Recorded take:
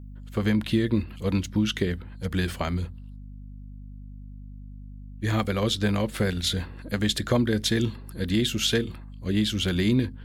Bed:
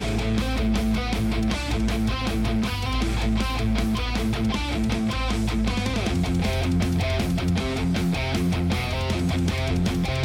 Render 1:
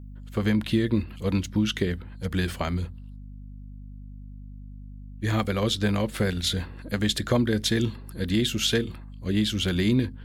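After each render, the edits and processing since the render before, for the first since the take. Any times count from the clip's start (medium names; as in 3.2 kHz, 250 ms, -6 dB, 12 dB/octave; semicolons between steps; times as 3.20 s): no audible change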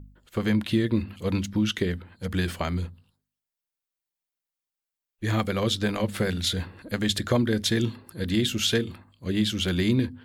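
de-hum 50 Hz, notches 5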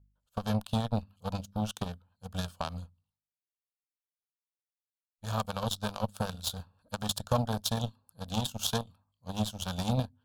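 Chebyshev shaper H 7 -18 dB, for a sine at -8.5 dBFS; static phaser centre 840 Hz, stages 4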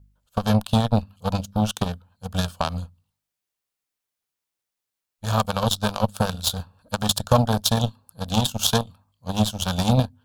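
trim +10.5 dB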